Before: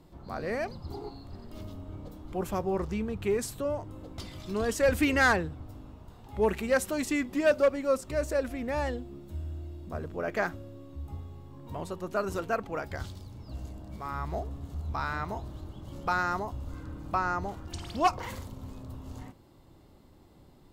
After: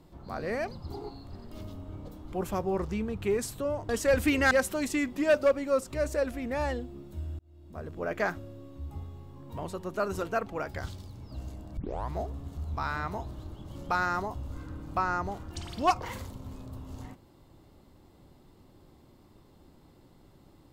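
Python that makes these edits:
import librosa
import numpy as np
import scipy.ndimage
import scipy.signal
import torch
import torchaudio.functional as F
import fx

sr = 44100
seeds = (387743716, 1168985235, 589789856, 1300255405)

y = fx.edit(x, sr, fx.cut(start_s=3.89, length_s=0.75),
    fx.cut(start_s=5.26, length_s=1.42),
    fx.fade_in_span(start_s=9.56, length_s=0.66),
    fx.tape_start(start_s=13.94, length_s=0.33), tone=tone)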